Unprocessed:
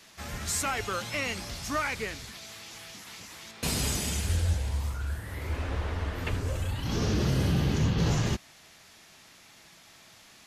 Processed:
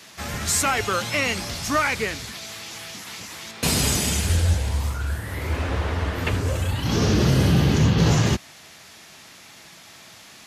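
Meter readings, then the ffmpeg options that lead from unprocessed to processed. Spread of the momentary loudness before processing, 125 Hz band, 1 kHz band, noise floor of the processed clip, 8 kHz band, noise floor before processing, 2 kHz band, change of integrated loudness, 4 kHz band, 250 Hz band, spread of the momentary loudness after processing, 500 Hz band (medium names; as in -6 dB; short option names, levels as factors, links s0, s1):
16 LU, +7.5 dB, +8.5 dB, -47 dBFS, +8.5 dB, -55 dBFS, +8.5 dB, +8.0 dB, +8.5 dB, +8.5 dB, 16 LU, +8.5 dB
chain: -af "highpass=66,volume=2.66"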